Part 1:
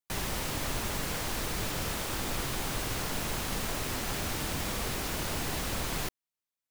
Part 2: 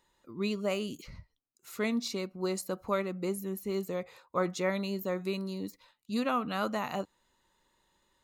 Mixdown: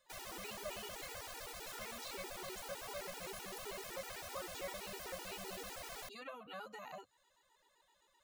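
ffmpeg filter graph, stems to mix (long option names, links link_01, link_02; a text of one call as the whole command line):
ffmpeg -i stem1.wav -i stem2.wav -filter_complex "[0:a]volume=-10dB[link_01];[1:a]bandreject=frequency=60:width_type=h:width=6,bandreject=frequency=120:width_type=h:width=6,acrossover=split=220|940|2800[link_02][link_03][link_04][link_05];[link_02]acompressor=threshold=-47dB:ratio=4[link_06];[link_03]acompressor=threshold=-47dB:ratio=4[link_07];[link_04]acompressor=threshold=-48dB:ratio=4[link_08];[link_05]acompressor=threshold=-56dB:ratio=4[link_09];[link_06][link_07][link_08][link_09]amix=inputs=4:normalize=0,alimiter=level_in=13dB:limit=-24dB:level=0:latency=1:release=176,volume=-13dB,volume=2.5dB[link_10];[link_01][link_10]amix=inputs=2:normalize=0,lowshelf=frequency=360:width_type=q:width=1.5:gain=-10.5,afftfilt=real='re*gt(sin(2*PI*7.8*pts/sr)*(1-2*mod(floor(b*sr/1024/250),2)),0)':imag='im*gt(sin(2*PI*7.8*pts/sr)*(1-2*mod(floor(b*sr/1024/250),2)),0)':win_size=1024:overlap=0.75" out.wav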